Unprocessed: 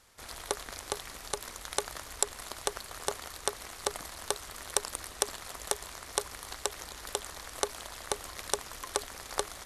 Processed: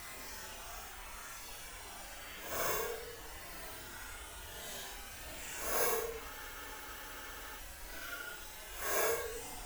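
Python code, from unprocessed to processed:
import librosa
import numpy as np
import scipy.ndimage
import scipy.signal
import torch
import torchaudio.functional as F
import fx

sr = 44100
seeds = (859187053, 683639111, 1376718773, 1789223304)

y = fx.partial_stretch(x, sr, pct=122)
y = fx.paulstretch(y, sr, seeds[0], factor=7.5, window_s=0.05, from_s=7.76)
y = fx.spec_freeze(y, sr, seeds[1], at_s=6.32, hold_s=1.25)
y = F.gain(torch.from_numpy(y), 2.0).numpy()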